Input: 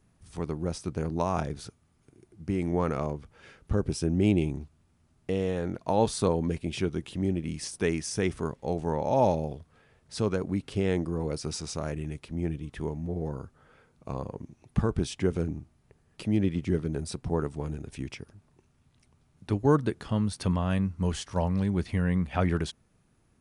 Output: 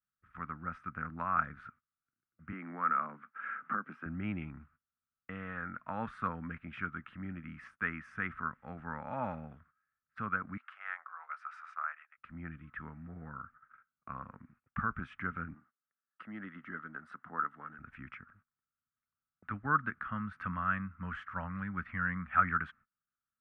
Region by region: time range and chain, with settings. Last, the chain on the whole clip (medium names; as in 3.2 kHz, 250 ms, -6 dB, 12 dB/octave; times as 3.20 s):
2.52–4.06 s: high-pass 200 Hz 24 dB/octave + treble shelf 4.1 kHz -8 dB + three bands compressed up and down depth 70%
10.57–12.18 s: steep high-pass 720 Hz + dynamic bell 2.7 kHz, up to -3 dB, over -48 dBFS, Q 1.1
15.54–17.79 s: high-pass 290 Hz + band-stop 2.4 kHz, Q 5
whole clip: FFT filter 240 Hz 0 dB, 390 Hz -24 dB, 940 Hz -12 dB, 1.3 kHz +11 dB, 4.3 kHz -21 dB; gate -52 dBFS, range -25 dB; three-band isolator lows -17 dB, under 380 Hz, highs -22 dB, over 2.8 kHz; trim +2 dB